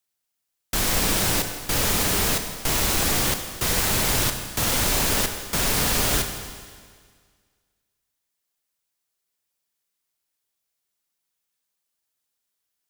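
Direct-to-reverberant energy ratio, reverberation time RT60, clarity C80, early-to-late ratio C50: 6.0 dB, 1.8 s, 8.5 dB, 7.5 dB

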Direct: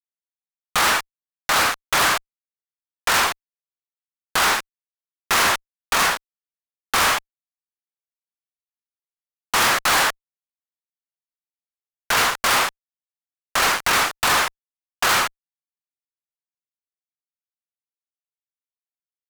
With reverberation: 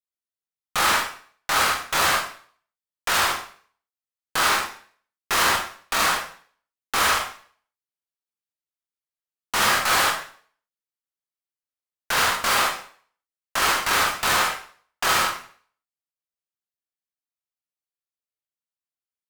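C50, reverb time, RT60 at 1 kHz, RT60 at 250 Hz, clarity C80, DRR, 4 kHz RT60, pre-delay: 6.5 dB, 0.50 s, 0.50 s, 0.50 s, 10.5 dB, 0.0 dB, 0.45 s, 7 ms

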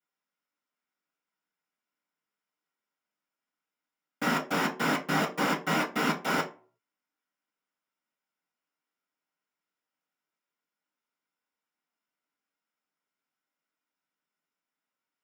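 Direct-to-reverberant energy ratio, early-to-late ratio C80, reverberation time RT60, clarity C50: -10.0 dB, 18.0 dB, 0.40 s, 12.5 dB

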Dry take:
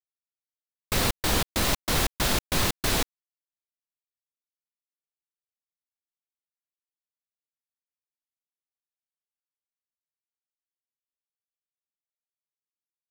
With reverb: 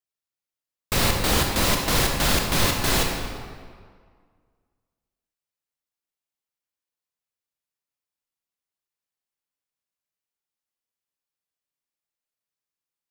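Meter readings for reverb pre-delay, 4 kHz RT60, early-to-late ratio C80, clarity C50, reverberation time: 21 ms, 1.3 s, 4.0 dB, 2.5 dB, 1.9 s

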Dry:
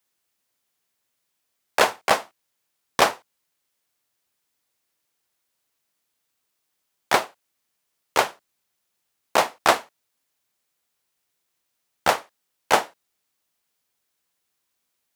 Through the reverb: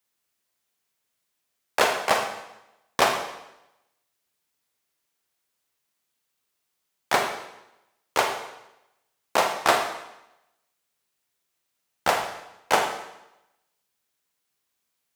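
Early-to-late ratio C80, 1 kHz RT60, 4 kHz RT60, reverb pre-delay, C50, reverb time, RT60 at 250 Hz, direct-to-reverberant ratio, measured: 8.0 dB, 0.90 s, 0.85 s, 37 ms, 6.0 dB, 0.90 s, 0.90 s, 3.0 dB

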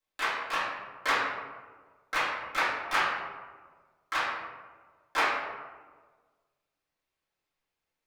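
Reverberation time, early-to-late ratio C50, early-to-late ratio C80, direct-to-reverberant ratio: 1.5 s, 1.0 dB, 3.0 dB, -13.5 dB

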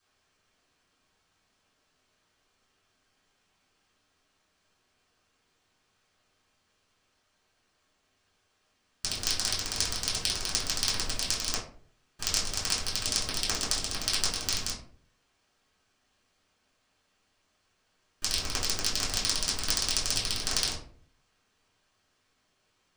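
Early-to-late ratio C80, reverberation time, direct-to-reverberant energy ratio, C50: 11.5 dB, 0.50 s, -7.5 dB, 6.0 dB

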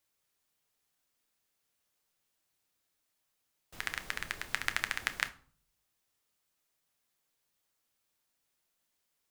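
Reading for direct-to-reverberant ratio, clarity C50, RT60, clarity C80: 9.0 dB, 17.0 dB, 0.50 s, 21.5 dB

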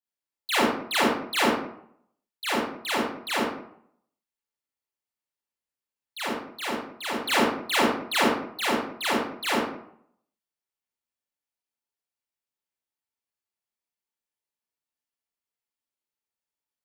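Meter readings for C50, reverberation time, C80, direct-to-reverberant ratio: -0.5 dB, 0.65 s, 4.5 dB, -8.5 dB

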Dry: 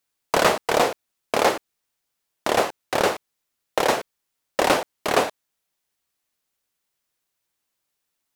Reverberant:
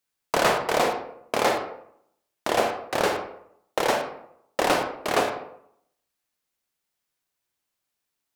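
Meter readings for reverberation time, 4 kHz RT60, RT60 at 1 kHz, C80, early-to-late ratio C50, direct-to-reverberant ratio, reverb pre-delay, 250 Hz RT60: 0.70 s, 0.40 s, 0.70 s, 10.0 dB, 6.5 dB, 4.5 dB, 34 ms, 0.75 s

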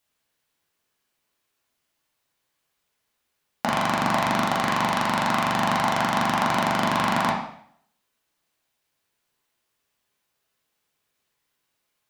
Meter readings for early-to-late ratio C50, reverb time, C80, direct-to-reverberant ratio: 4.0 dB, 0.60 s, 8.0 dB, -4.0 dB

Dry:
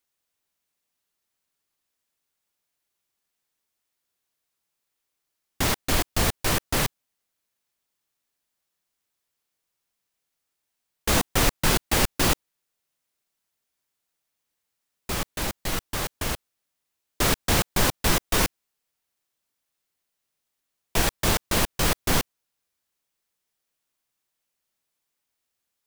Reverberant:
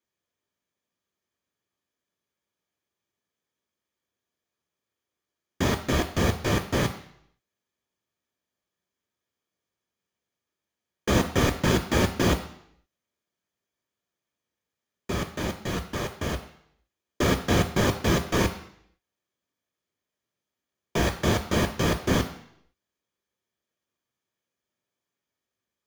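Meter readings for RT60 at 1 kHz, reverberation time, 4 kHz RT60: 0.70 s, 0.70 s, 0.70 s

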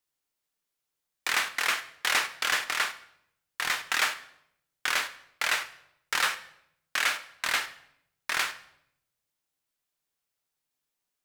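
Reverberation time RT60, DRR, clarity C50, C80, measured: 0.75 s, 8.5 dB, 14.0 dB, 17.0 dB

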